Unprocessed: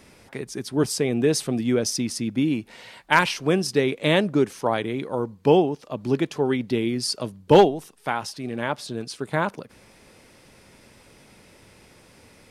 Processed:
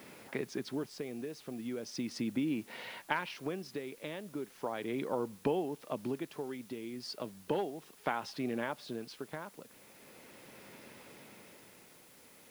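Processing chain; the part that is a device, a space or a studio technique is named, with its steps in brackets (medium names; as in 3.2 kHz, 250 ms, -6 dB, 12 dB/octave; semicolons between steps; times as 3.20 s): medium wave at night (band-pass 170–3600 Hz; compression, threshold -30 dBFS, peak gain reduction 19.5 dB; tremolo 0.37 Hz, depth 66%; whistle 10 kHz -68 dBFS; white noise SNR 22 dB)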